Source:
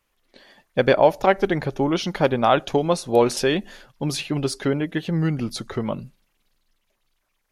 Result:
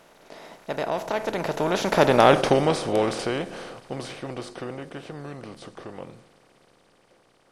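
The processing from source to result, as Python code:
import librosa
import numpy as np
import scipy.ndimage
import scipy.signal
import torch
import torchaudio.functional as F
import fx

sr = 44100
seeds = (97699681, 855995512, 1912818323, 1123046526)

y = fx.bin_compress(x, sr, power=0.4)
y = fx.doppler_pass(y, sr, speed_mps=38, closest_m=13.0, pass_at_s=2.26)
y = F.gain(torch.from_numpy(y), -2.5).numpy()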